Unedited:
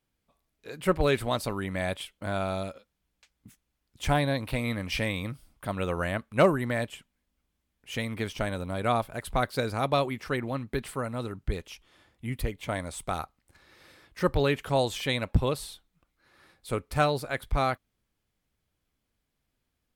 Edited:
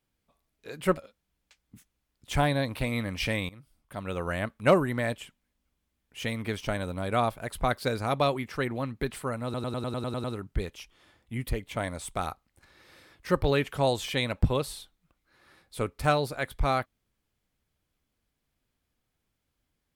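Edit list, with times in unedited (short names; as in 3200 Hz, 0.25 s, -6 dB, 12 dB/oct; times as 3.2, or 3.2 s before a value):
0.97–2.69 cut
5.21–6.2 fade in, from -18.5 dB
11.16 stutter 0.10 s, 9 plays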